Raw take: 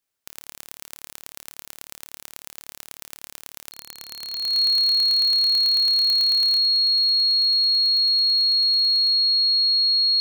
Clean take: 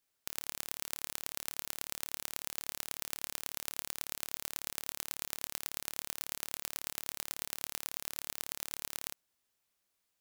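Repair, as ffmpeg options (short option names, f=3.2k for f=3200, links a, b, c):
-af "bandreject=f=4.3k:w=30,asetnsamples=n=441:p=0,asendcmd='6.59 volume volume 10.5dB',volume=0dB"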